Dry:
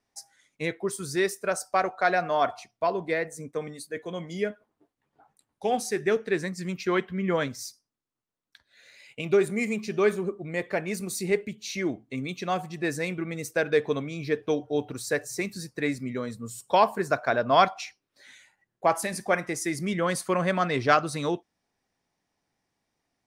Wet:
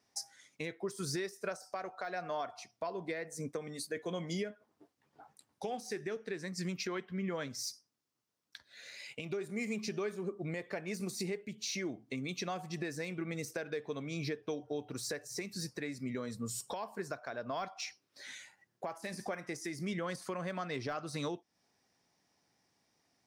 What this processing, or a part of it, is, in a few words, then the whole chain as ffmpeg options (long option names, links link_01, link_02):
broadcast voice chain: -af "highpass=84,deesser=0.8,acompressor=threshold=-37dB:ratio=4,equalizer=frequency=5300:width_type=o:width=0.6:gain=6,alimiter=level_in=5.5dB:limit=-24dB:level=0:latency=1:release=362,volume=-5.5dB,volume=2.5dB"